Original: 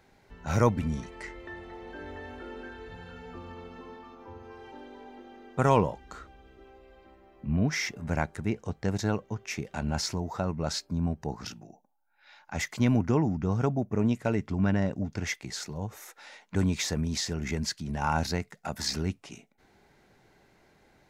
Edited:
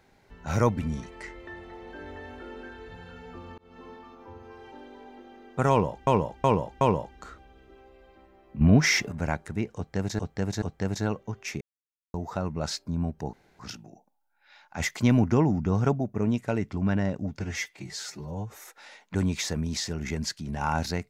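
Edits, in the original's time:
3.58–3.85 fade in
5.7–6.07 loop, 4 plays
7.5–8.01 gain +8 dB
8.65–9.08 loop, 3 plays
9.64–10.17 mute
11.36 insert room tone 0.26 s
12.57–13.7 gain +3 dB
15.17–15.9 stretch 1.5×

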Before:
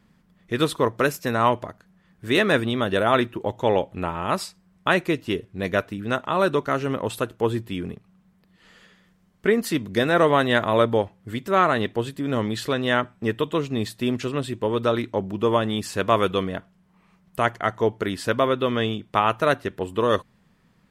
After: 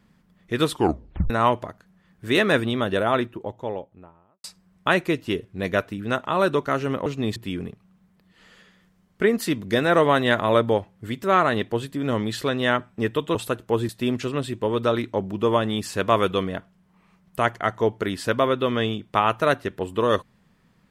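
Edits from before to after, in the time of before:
0.72 tape stop 0.58 s
2.62–4.44 studio fade out
7.06–7.6 swap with 13.59–13.89

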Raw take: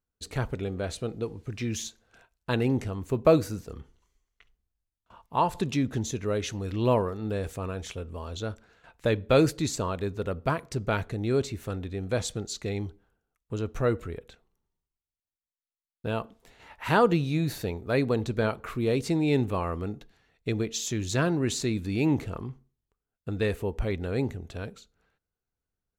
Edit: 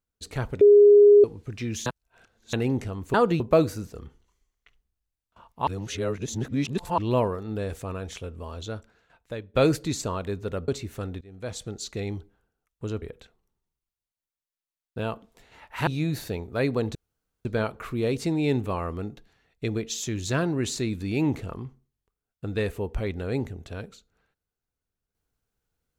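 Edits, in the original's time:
0.61–1.24 bleep 411 Hz -10 dBFS
1.86–2.53 reverse
5.41–6.72 reverse
8.29–9.28 fade out, to -15.5 dB
10.42–11.37 cut
11.9–12.54 fade in, from -20.5 dB
13.71–14.1 cut
16.95–17.21 move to 3.14
18.29 insert room tone 0.50 s

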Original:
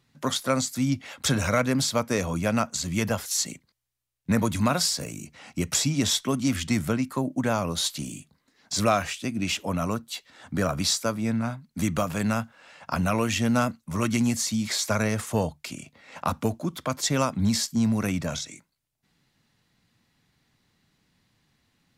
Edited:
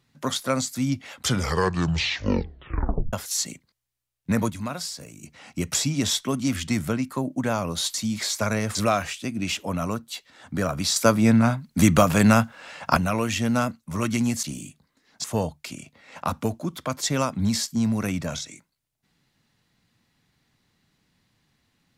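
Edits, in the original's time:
1.16 tape stop 1.97 s
4.5–5.23 gain -8 dB
7.94–8.75 swap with 14.43–15.24
10.96–12.97 gain +9 dB

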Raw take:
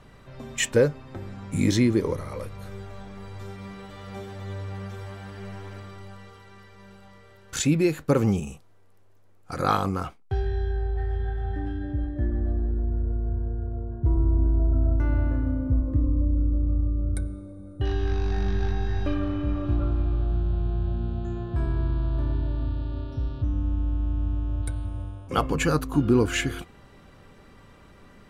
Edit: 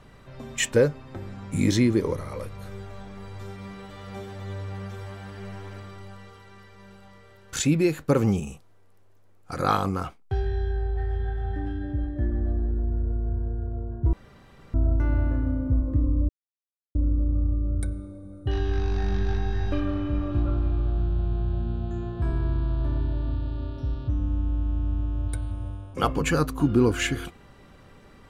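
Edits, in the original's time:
14.13–14.74 room tone
16.29 insert silence 0.66 s

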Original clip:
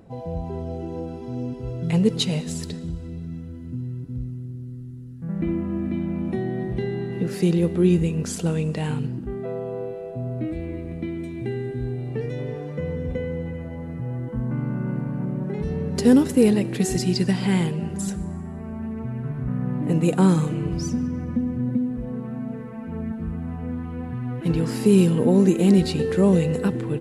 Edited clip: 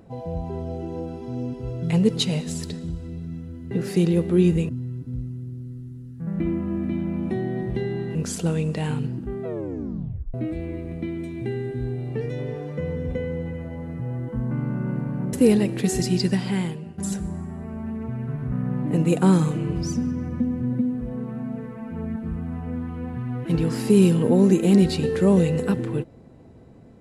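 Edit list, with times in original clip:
7.17–8.15 move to 3.71
9.45 tape stop 0.89 s
15.33–16.29 cut
17.2–17.94 fade out, to -14.5 dB

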